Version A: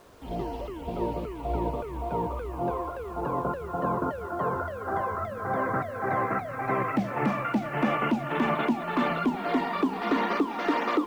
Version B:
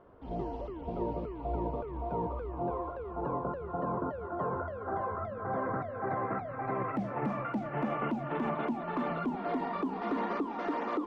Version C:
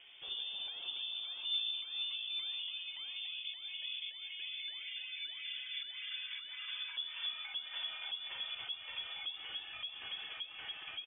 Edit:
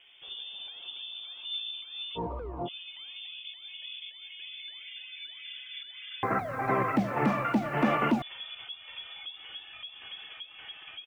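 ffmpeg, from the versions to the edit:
ffmpeg -i take0.wav -i take1.wav -i take2.wav -filter_complex "[2:a]asplit=3[link_01][link_02][link_03];[link_01]atrim=end=2.19[link_04];[1:a]atrim=start=2.15:end=2.69[link_05];[link_02]atrim=start=2.65:end=6.232[link_06];[0:a]atrim=start=6.228:end=8.222[link_07];[link_03]atrim=start=8.218[link_08];[link_04][link_05]acrossfade=duration=0.04:curve1=tri:curve2=tri[link_09];[link_09][link_06]acrossfade=duration=0.04:curve1=tri:curve2=tri[link_10];[link_10][link_07]acrossfade=duration=0.004:curve1=hsin:curve2=hsin[link_11];[link_11][link_08]acrossfade=duration=0.004:curve1=hsin:curve2=hsin" out.wav

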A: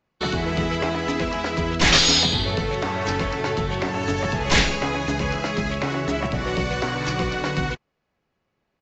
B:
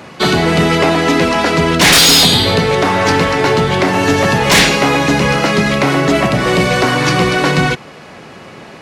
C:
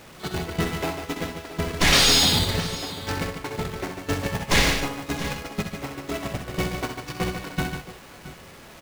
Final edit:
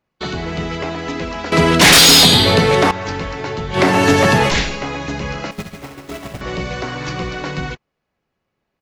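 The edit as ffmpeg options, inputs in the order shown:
ffmpeg -i take0.wav -i take1.wav -i take2.wav -filter_complex "[1:a]asplit=2[link_01][link_02];[0:a]asplit=4[link_03][link_04][link_05][link_06];[link_03]atrim=end=1.522[link_07];[link_01]atrim=start=1.518:end=2.912[link_08];[link_04]atrim=start=2.908:end=3.79[link_09];[link_02]atrim=start=3.73:end=4.52[link_10];[link_05]atrim=start=4.46:end=5.512[link_11];[2:a]atrim=start=5.508:end=6.412[link_12];[link_06]atrim=start=6.408[link_13];[link_07][link_08]acrossfade=duration=0.004:curve1=hsin:curve2=hsin[link_14];[link_14][link_09]acrossfade=duration=0.004:curve1=hsin:curve2=hsin[link_15];[link_15][link_10]acrossfade=duration=0.06:curve1=tri:curve2=tri[link_16];[link_16][link_11]acrossfade=duration=0.06:curve1=tri:curve2=tri[link_17];[link_17][link_12]acrossfade=duration=0.004:curve1=hsin:curve2=hsin[link_18];[link_18][link_13]acrossfade=duration=0.004:curve1=hsin:curve2=hsin" out.wav

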